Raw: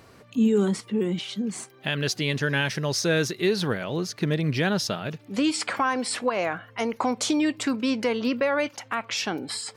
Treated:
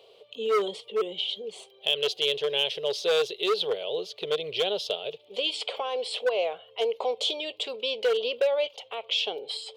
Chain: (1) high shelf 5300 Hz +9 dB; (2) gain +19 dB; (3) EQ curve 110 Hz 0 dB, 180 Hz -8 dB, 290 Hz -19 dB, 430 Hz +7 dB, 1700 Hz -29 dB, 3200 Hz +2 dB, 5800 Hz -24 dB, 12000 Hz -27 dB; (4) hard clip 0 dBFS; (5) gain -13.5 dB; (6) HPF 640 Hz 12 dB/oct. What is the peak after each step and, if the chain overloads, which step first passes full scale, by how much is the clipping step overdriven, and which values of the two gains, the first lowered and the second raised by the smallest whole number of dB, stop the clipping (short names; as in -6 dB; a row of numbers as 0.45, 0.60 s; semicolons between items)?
-10.0, +9.0, +9.5, 0.0, -13.5, -11.5 dBFS; step 2, 9.5 dB; step 2 +9 dB, step 5 -3.5 dB